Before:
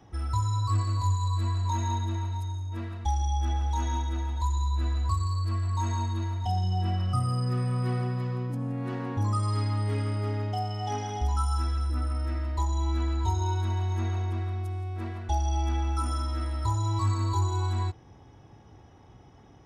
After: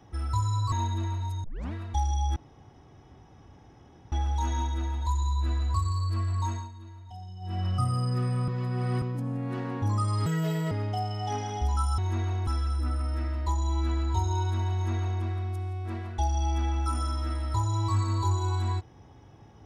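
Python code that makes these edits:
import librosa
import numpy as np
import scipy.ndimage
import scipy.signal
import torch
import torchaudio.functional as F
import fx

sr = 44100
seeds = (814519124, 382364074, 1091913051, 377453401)

y = fx.edit(x, sr, fx.cut(start_s=0.72, length_s=1.11),
    fx.tape_start(start_s=2.55, length_s=0.29),
    fx.insert_room_tone(at_s=3.47, length_s=1.76),
    fx.fade_down_up(start_s=5.77, length_s=1.25, db=-15.0, fade_s=0.27),
    fx.reverse_span(start_s=7.83, length_s=0.54),
    fx.speed_span(start_s=9.61, length_s=0.7, speed=1.55),
    fx.duplicate(start_s=13.84, length_s=0.49, to_s=11.58), tone=tone)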